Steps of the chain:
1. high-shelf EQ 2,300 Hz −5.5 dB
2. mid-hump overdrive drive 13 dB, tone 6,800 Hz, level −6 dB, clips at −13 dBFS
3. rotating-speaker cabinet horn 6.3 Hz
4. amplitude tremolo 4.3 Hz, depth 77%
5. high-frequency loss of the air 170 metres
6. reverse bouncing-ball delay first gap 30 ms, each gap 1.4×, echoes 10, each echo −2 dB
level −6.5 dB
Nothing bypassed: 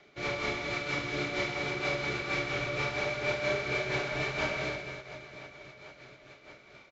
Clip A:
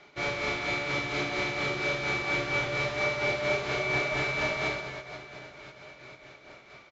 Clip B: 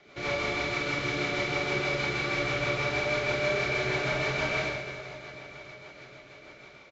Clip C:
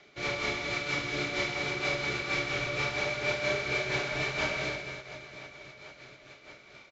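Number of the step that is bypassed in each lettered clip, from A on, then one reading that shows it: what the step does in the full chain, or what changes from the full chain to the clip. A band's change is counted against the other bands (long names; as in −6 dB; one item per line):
3, change in crest factor −2.0 dB
4, change in integrated loudness +3.5 LU
1, 4 kHz band +3.5 dB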